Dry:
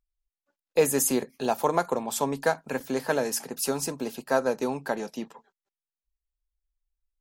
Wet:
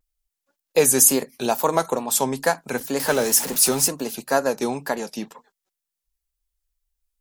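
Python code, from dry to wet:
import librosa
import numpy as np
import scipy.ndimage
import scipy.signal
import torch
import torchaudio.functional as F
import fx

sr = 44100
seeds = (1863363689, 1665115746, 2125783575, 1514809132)

y = fx.zero_step(x, sr, step_db=-33.0, at=(3.0, 3.88))
y = fx.high_shelf(y, sr, hz=4400.0, db=9.5)
y = fx.wow_flutter(y, sr, seeds[0], rate_hz=2.1, depth_cents=96.0)
y = F.gain(torch.from_numpy(y), 3.5).numpy()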